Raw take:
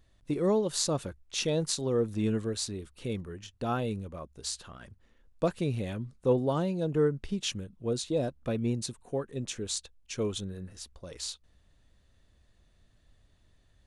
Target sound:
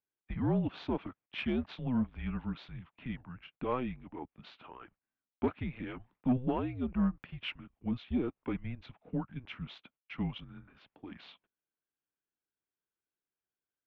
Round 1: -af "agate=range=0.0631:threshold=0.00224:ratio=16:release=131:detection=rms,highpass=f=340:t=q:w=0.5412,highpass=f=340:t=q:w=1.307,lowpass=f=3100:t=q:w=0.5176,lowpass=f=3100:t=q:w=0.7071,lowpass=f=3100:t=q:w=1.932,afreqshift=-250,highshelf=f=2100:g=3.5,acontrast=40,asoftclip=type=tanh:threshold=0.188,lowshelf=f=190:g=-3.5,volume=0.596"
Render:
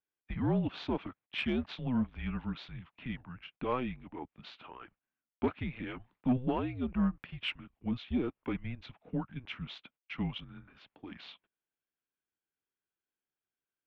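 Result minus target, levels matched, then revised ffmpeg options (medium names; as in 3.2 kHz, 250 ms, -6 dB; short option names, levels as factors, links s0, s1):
4 kHz band +4.0 dB
-af "agate=range=0.0631:threshold=0.00224:ratio=16:release=131:detection=rms,highpass=f=340:t=q:w=0.5412,highpass=f=340:t=q:w=1.307,lowpass=f=3100:t=q:w=0.5176,lowpass=f=3100:t=q:w=0.7071,lowpass=f=3100:t=q:w=1.932,afreqshift=-250,highshelf=f=2100:g=-2.5,acontrast=40,asoftclip=type=tanh:threshold=0.188,lowshelf=f=190:g=-3.5,volume=0.596"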